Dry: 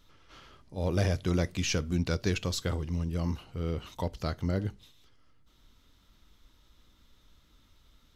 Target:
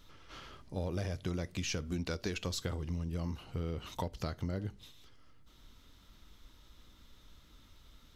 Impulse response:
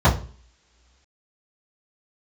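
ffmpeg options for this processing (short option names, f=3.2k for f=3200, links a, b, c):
-filter_complex "[0:a]asettb=1/sr,asplit=3[a][b][c];[a]atrim=end=1.874[d];[b]atrim=start=1.87:end=2.46,asetpts=PTS-STARTPTS,afade=t=in:d=0.004:c=qsin,afade=t=out:st=0.586:d=0.004:c=qsin,equalizer=f=120:t=o:w=0.67:g=-12[e];[c]atrim=start=2.456[f];[d][e]acrossfade=d=0.004:c1=hsin:c2=qsin[g];[g][f]acrossfade=d=0.004:c1=qsin:c2=hsin,acompressor=threshold=-36dB:ratio=8,volume=3dB"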